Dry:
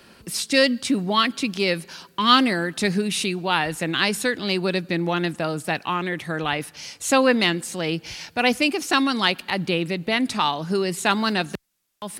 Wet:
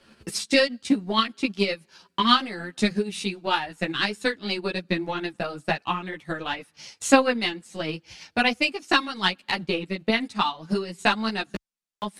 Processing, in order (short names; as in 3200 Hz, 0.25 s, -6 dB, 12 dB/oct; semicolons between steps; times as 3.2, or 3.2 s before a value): LPF 9600 Hz 12 dB/oct; transient shaper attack +11 dB, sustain -10 dB; ensemble effect; gain -4 dB